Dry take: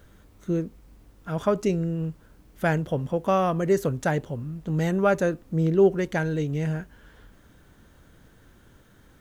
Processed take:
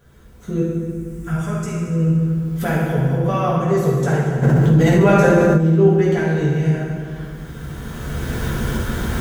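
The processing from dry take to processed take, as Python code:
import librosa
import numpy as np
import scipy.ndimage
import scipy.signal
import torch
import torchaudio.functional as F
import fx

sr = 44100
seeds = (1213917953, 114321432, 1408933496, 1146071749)

y = fx.recorder_agc(x, sr, target_db=-16.5, rise_db_per_s=15.0, max_gain_db=30)
y = fx.graphic_eq(y, sr, hz=(125, 250, 500, 1000, 2000, 4000, 8000), db=(5, -10, -8, -5, 3, -10, 9), at=(0.6, 1.88))
y = fx.rev_fdn(y, sr, rt60_s=2.1, lf_ratio=1.45, hf_ratio=0.7, size_ms=41.0, drr_db=-8.0)
y = fx.env_flatten(y, sr, amount_pct=70, at=(4.42, 5.57), fade=0.02)
y = F.gain(torch.from_numpy(y), -4.5).numpy()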